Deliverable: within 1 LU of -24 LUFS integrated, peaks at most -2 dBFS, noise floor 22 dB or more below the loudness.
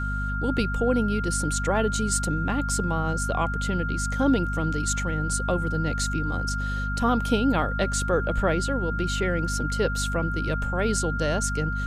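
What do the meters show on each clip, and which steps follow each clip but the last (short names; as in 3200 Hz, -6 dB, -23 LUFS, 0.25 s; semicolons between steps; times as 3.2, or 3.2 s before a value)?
hum 50 Hz; harmonics up to 250 Hz; hum level -26 dBFS; steady tone 1400 Hz; tone level -30 dBFS; loudness -25.5 LUFS; peak -9.0 dBFS; loudness target -24.0 LUFS
-> de-hum 50 Hz, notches 5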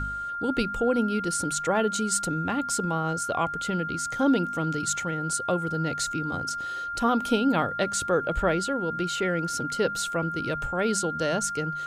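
hum none; steady tone 1400 Hz; tone level -30 dBFS
-> notch 1400 Hz, Q 30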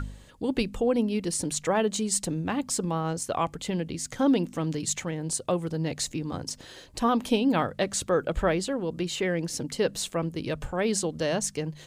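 steady tone none; loudness -28.0 LUFS; peak -11.0 dBFS; loudness target -24.0 LUFS
-> gain +4 dB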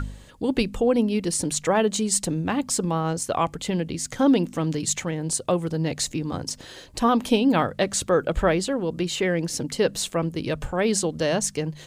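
loudness -24.0 LUFS; peak -7.0 dBFS; noise floor -46 dBFS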